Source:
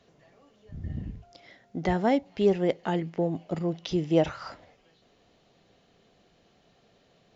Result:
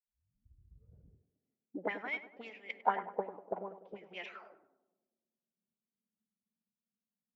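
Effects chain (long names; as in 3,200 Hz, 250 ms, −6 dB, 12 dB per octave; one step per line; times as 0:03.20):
turntable start at the beginning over 1.29 s
envelope filter 200–2,300 Hz, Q 6.2, up, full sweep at −21.5 dBFS
phase-vocoder pitch shift with formants kept +2 semitones
tape delay 100 ms, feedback 90%, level −8.5 dB, low-pass 1,200 Hz
multiband upward and downward expander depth 100%
level +1.5 dB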